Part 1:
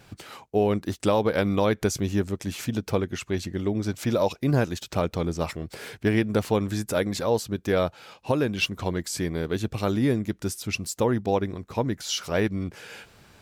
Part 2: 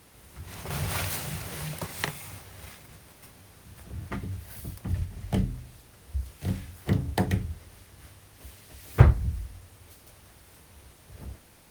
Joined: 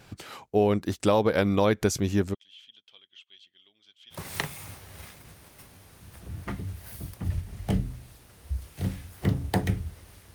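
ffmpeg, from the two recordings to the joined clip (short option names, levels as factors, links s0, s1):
-filter_complex "[0:a]asplit=3[s0][s1][s2];[s0]afade=t=out:st=2.33:d=0.02[s3];[s1]bandpass=f=3200:t=q:w=18:csg=0,afade=t=in:st=2.33:d=0.02,afade=t=out:st=4.24:d=0.02[s4];[s2]afade=t=in:st=4.24:d=0.02[s5];[s3][s4][s5]amix=inputs=3:normalize=0,apad=whole_dur=10.34,atrim=end=10.34,atrim=end=4.24,asetpts=PTS-STARTPTS[s6];[1:a]atrim=start=1.74:end=7.98,asetpts=PTS-STARTPTS[s7];[s6][s7]acrossfade=d=0.14:c1=tri:c2=tri"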